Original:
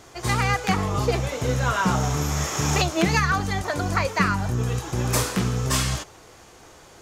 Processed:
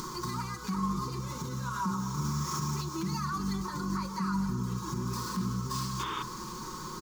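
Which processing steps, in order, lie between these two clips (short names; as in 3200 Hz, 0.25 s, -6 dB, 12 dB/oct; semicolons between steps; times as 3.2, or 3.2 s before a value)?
median filter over 5 samples; compressor 4:1, threshold -40 dBFS, peak gain reduction 20.5 dB; comb 5.5 ms, depth 73%; limiter -32.5 dBFS, peak gain reduction 8 dB; echo with dull and thin repeats by turns 0.124 s, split 940 Hz, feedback 81%, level -12.5 dB; painted sound noise, 5.99–6.23, 310–3700 Hz -39 dBFS; de-hum 66.83 Hz, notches 28; upward compressor, threshold -43 dBFS; EQ curve 100 Hz 0 dB, 230 Hz +8 dB, 440 Hz -4 dB, 710 Hz -25 dB, 1000 Hz +11 dB, 1800 Hz -9 dB, 2900 Hz -10 dB, 4500 Hz +5 dB; gain +5 dB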